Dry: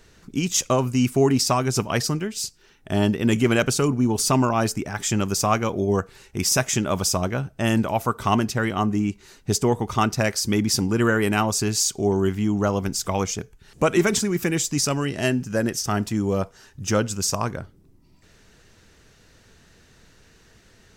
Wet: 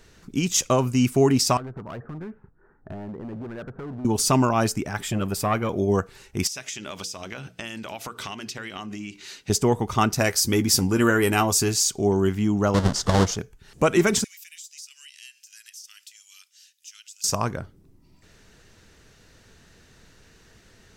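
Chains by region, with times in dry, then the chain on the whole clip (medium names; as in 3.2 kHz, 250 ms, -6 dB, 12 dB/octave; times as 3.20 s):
1.57–4.05 s: steep low-pass 1.6 kHz 48 dB/octave + compression 5:1, threshold -29 dBFS + hard clipper -31.5 dBFS
5.00–5.69 s: peaking EQ 6.2 kHz -12.5 dB 0.65 oct + transformer saturation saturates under 470 Hz
6.47–9.50 s: frequency weighting D + compression 12:1, threshold -30 dBFS + hum notches 60/120/180/240/300/360/420/480 Hz
10.13–11.74 s: treble shelf 10 kHz +10 dB + doubling 12 ms -8 dB
12.74–13.37 s: square wave that keeps the level + low-pass 6.5 kHz + peaking EQ 2.4 kHz -11.5 dB 0.38 oct
14.24–17.24 s: inverse Chebyshev high-pass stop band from 610 Hz, stop band 70 dB + compression 3:1, threshold -44 dBFS
whole clip: none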